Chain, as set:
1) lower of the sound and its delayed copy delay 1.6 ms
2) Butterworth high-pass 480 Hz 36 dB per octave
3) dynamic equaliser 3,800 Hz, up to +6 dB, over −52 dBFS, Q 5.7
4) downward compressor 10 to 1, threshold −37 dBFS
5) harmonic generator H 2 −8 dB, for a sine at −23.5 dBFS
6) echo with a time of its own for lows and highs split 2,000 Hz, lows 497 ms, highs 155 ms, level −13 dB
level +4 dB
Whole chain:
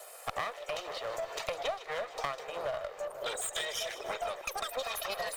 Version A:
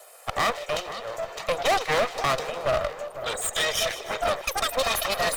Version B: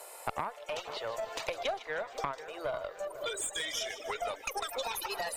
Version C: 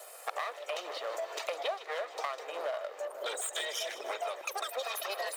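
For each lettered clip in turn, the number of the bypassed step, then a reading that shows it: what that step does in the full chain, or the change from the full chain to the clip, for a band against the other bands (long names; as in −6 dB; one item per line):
4, average gain reduction 8.5 dB
1, 250 Hz band +3.5 dB
5, change in crest factor −4.5 dB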